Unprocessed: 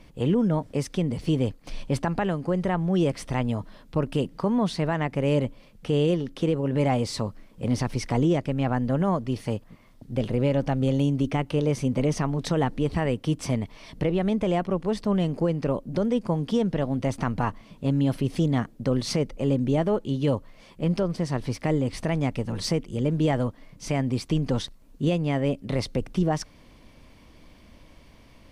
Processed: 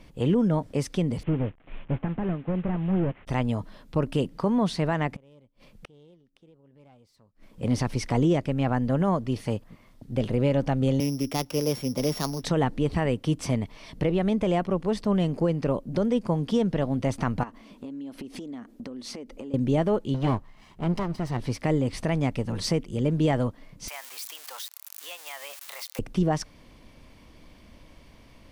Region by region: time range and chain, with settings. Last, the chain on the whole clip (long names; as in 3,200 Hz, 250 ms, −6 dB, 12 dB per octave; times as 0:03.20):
0:01.23–0:03.27: linear delta modulator 16 kbit/s, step −41 dBFS + expander for the loud parts, over −44 dBFS
0:05.11–0:07.62: phase distortion by the signal itself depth 0.063 ms + gate with flip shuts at −26 dBFS, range −32 dB
0:11.00–0:12.44: samples sorted by size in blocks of 8 samples + low-shelf EQ 160 Hz −10 dB + multiband upward and downward expander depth 40%
0:17.43–0:19.54: low shelf with overshoot 190 Hz −8 dB, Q 3 + downward compressor 16 to 1, threshold −34 dBFS
0:20.14–0:21.40: lower of the sound and its delayed copy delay 1 ms + high-shelf EQ 4,500 Hz −7.5 dB
0:23.88–0:25.99: spike at every zero crossing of −25 dBFS + high-pass filter 860 Hz 24 dB per octave + downward compressor 3 to 1, threshold −34 dBFS
whole clip: no processing